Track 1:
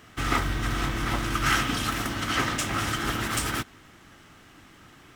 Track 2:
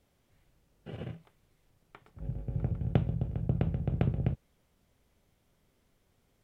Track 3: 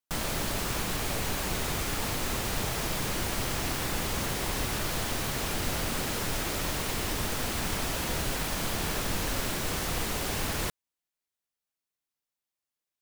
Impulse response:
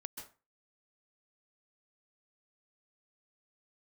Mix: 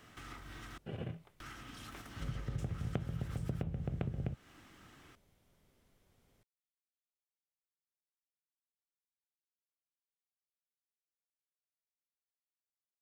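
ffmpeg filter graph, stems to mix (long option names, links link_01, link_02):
-filter_complex "[0:a]volume=-8dB,asplit=3[link_01][link_02][link_03];[link_01]atrim=end=0.78,asetpts=PTS-STARTPTS,afade=type=out:start_time=0.776:duration=0.004:curve=hsin[link_04];[link_02]atrim=start=0.78:end=1.4,asetpts=PTS-STARTPTS,volume=0[link_05];[link_03]atrim=start=1.4,asetpts=PTS-STARTPTS,afade=type=in:duration=0.004:curve=hsin[link_06];[link_04][link_05][link_06]concat=n=3:v=0:a=1[link_07];[1:a]volume=-0.5dB[link_08];[link_07]acrossover=split=220|930[link_09][link_10][link_11];[link_09]acompressor=threshold=-49dB:ratio=4[link_12];[link_10]acompressor=threshold=-54dB:ratio=4[link_13];[link_11]acompressor=threshold=-48dB:ratio=4[link_14];[link_12][link_13][link_14]amix=inputs=3:normalize=0,alimiter=level_in=15dB:limit=-24dB:level=0:latency=1:release=346,volume=-15dB,volume=0dB[link_15];[link_08][link_15]amix=inputs=2:normalize=0,acompressor=threshold=-36dB:ratio=3"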